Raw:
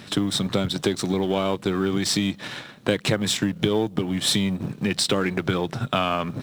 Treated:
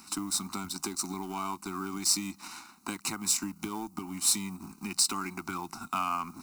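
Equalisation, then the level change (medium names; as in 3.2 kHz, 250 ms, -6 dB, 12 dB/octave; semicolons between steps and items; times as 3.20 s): tilt shelf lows -8 dB, about 640 Hz; static phaser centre 470 Hz, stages 6; static phaser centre 1.4 kHz, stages 4; -3.0 dB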